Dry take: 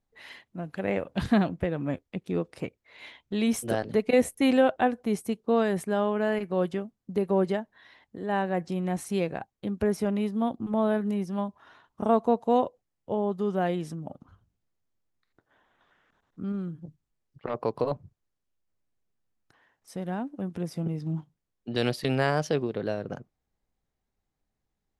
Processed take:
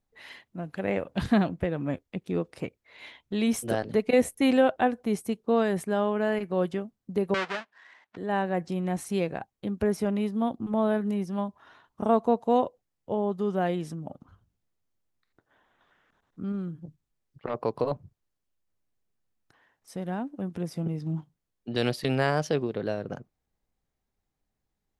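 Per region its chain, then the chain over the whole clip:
7.34–8.17 s: square wave that keeps the level + band-pass filter 1.8 kHz, Q 0.85 + distance through air 82 m
whole clip: none

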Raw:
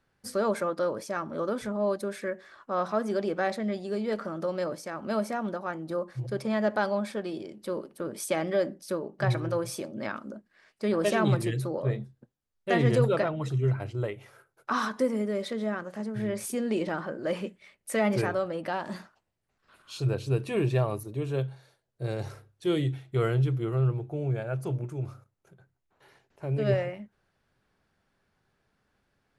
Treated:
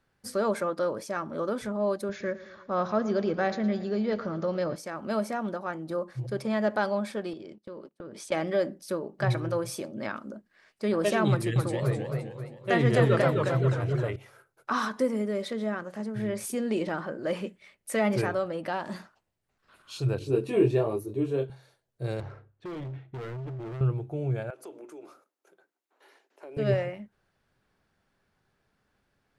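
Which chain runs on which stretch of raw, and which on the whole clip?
2.09–4.76 s: brick-wall FIR low-pass 7.2 kHz + peaking EQ 84 Hz +13 dB 1.7 oct + feedback delay 113 ms, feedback 60%, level -16 dB
7.33–8.32 s: low-pass 5.8 kHz + gate -47 dBFS, range -22 dB + compression, threshold -38 dBFS
11.30–14.16 s: peaking EQ 1.4 kHz +3 dB 0.87 oct + modulated delay 263 ms, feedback 44%, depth 154 cents, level -4 dB
20.19–21.50 s: peaking EQ 360 Hz +11.5 dB 1.1 oct + detune thickener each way 17 cents
22.20–23.81 s: low-pass 2 kHz + compression, threshold -28 dBFS + overload inside the chain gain 35 dB
24.50–26.57 s: steep high-pass 270 Hz + compression 3:1, threshold -42 dBFS
whole clip: none

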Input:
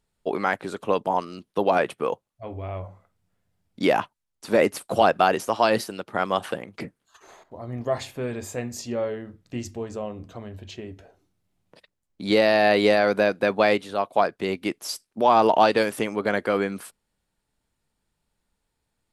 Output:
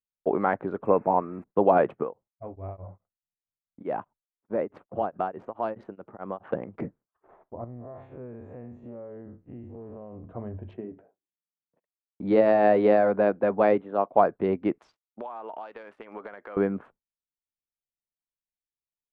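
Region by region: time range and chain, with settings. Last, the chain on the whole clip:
0.85–1.44 s: zero-crossing glitches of -27.5 dBFS + brick-wall FIR band-stop 2.7–7.5 kHz
2.03–6.53 s: compression 1.5:1, threshold -40 dBFS + tremolo of two beating tones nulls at 4.7 Hz
7.64–10.24 s: spectral blur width 103 ms + compression, threshold -40 dBFS
10.77–14.11 s: high-pass 150 Hz 24 dB/octave + AM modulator 100 Hz, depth 30%
14.78–16.57 s: frequency weighting ITU-R 468 + compression 20:1, threshold -33 dBFS
whole clip: local Wiener filter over 9 samples; low-pass 1.1 kHz 12 dB/octave; expander -46 dBFS; trim +2 dB

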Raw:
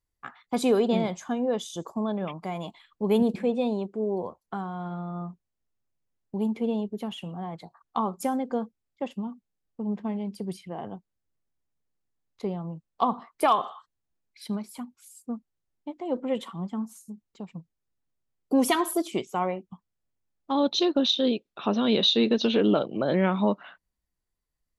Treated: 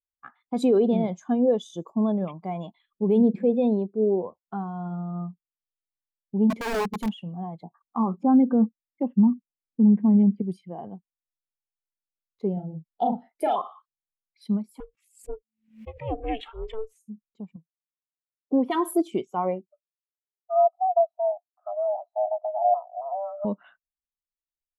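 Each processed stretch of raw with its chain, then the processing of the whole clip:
6.50–7.11 s: tone controls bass +6 dB, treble +10 dB + integer overflow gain 23.5 dB
7.63–10.42 s: peaking EQ 250 Hz +9 dB 1.4 oct + LFO low-pass saw up 5 Hz 890–2700 Hz
12.53–13.56 s: Butterworth band-stop 1.1 kHz, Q 2.2 + doubling 38 ms -3 dB
14.80–17.00 s: peaking EQ 2.4 kHz +15 dB 1 oct + ring modulator 220 Hz + swell ahead of each attack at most 110 dB/s
17.56–18.71 s: high-pass 340 Hz 6 dB/octave + distance through air 410 m
19.67–23.45 s: cascade formant filter u + frequency shift +400 Hz
whole clip: peak limiter -19 dBFS; spectral contrast expander 1.5:1; trim +8.5 dB

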